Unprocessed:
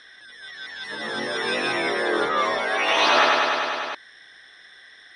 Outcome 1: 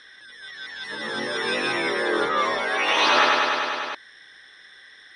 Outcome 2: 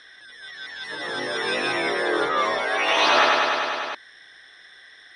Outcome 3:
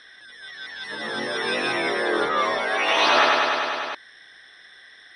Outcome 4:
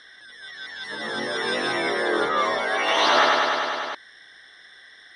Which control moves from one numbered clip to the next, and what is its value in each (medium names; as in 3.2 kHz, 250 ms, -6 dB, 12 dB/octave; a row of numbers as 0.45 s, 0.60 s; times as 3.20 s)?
band-stop, frequency: 690 Hz, 220 Hz, 6.8 kHz, 2.5 kHz